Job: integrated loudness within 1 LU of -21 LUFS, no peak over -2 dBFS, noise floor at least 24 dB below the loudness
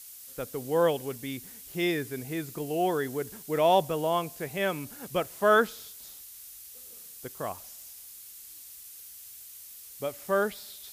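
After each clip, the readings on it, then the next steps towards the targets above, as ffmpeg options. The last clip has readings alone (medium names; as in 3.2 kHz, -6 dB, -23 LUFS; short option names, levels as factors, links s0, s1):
noise floor -47 dBFS; noise floor target -53 dBFS; loudness -29.0 LUFS; peak level -11.0 dBFS; loudness target -21.0 LUFS
-> -af "afftdn=nr=6:nf=-47"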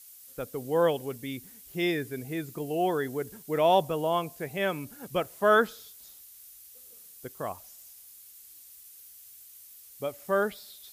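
noise floor -51 dBFS; noise floor target -53 dBFS
-> -af "afftdn=nr=6:nf=-51"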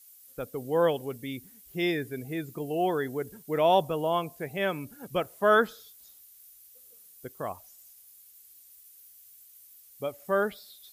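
noise floor -55 dBFS; loudness -29.0 LUFS; peak level -11.0 dBFS; loudness target -21.0 LUFS
-> -af "volume=2.51"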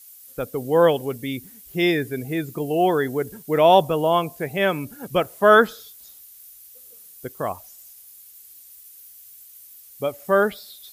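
loudness -21.0 LUFS; peak level -3.0 dBFS; noise floor -47 dBFS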